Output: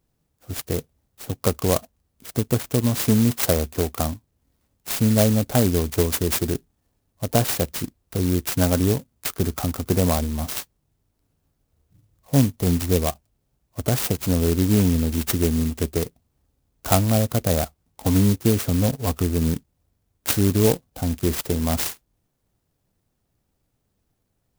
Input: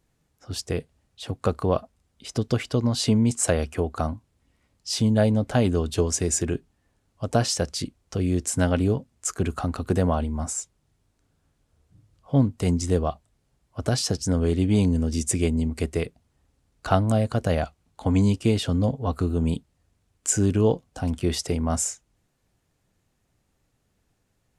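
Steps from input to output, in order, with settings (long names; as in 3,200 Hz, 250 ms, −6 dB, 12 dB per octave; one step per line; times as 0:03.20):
in parallel at −4.5 dB: dead-zone distortion −39.5 dBFS
on the sum: converter with an unsteady clock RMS 0.13 ms
level −1.5 dB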